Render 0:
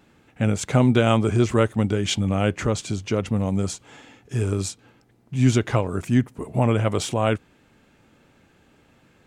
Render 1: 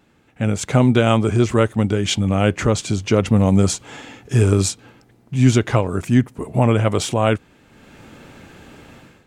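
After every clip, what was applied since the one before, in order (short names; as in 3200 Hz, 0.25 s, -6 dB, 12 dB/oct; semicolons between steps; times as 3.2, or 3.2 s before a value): AGC gain up to 16 dB; gain -1 dB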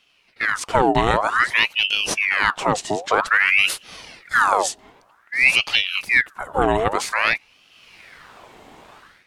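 ring modulator with a swept carrier 1700 Hz, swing 70%, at 0.52 Hz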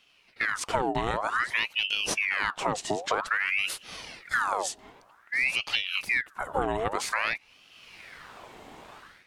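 compressor 5:1, threshold -22 dBFS, peak gain reduction 11.5 dB; gain -2 dB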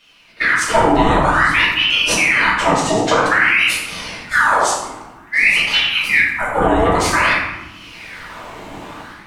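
reverb RT60 1.3 s, pre-delay 3 ms, DRR -8 dB; gain +5.5 dB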